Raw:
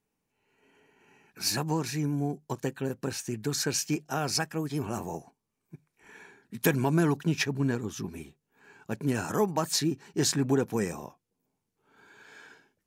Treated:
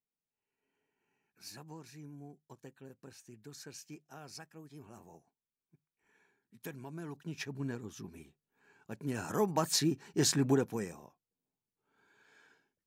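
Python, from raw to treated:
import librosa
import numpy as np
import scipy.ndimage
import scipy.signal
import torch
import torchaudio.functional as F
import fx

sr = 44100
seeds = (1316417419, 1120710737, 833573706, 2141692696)

y = fx.gain(x, sr, db=fx.line((7.0, -20.0), (7.55, -10.5), (8.96, -10.5), (9.57, -2.5), (10.53, -2.5), (11.0, -13.0)))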